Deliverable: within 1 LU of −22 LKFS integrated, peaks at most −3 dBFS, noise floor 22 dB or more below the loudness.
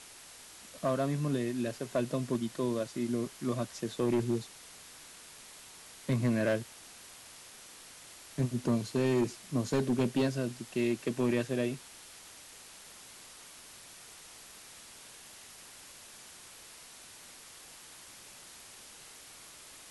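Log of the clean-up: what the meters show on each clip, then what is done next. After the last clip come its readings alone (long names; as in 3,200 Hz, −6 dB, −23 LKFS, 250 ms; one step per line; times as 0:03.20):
share of clipped samples 0.9%; peaks flattened at −23.0 dBFS; background noise floor −52 dBFS; target noise floor −55 dBFS; integrated loudness −32.5 LKFS; sample peak −23.0 dBFS; target loudness −22.0 LKFS
→ clipped peaks rebuilt −23 dBFS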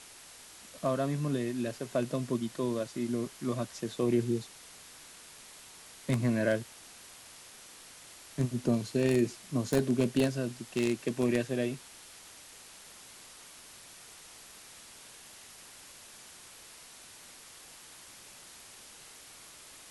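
share of clipped samples 0.0%; background noise floor −52 dBFS; target noise floor −54 dBFS
→ noise reduction from a noise print 6 dB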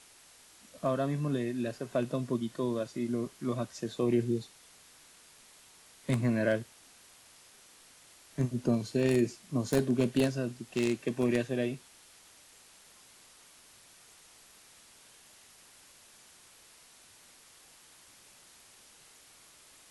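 background noise floor −58 dBFS; integrated loudness −32.0 LKFS; sample peak −14.0 dBFS; target loudness −22.0 LKFS
→ level +10 dB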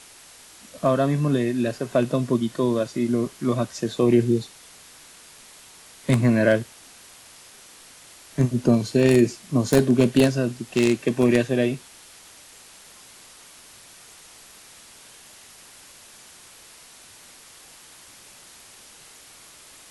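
integrated loudness −22.0 LKFS; sample peak −4.0 dBFS; background noise floor −48 dBFS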